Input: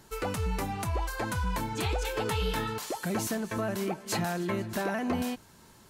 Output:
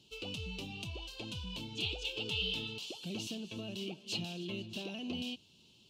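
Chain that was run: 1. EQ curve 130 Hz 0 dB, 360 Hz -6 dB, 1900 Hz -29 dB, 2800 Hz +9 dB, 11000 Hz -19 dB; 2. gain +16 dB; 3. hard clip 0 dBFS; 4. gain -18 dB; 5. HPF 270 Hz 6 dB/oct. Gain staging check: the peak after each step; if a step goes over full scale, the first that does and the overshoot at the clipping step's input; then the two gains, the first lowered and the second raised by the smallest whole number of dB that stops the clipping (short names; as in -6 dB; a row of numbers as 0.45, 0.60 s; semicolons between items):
-19.5, -3.5, -3.5, -21.5, -22.0 dBFS; no overload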